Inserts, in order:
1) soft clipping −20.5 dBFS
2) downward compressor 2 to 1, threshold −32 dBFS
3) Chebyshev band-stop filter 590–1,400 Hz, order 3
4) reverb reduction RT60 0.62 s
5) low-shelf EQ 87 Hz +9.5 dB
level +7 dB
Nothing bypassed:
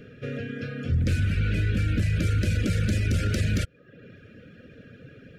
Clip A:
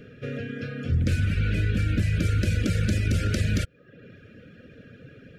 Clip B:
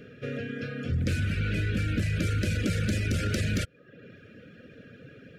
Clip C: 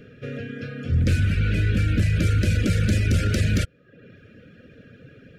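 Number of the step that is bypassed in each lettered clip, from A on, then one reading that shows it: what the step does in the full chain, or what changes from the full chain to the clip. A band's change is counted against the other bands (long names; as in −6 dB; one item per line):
1, distortion level −20 dB
5, 125 Hz band −4.0 dB
2, change in momentary loudness spread +3 LU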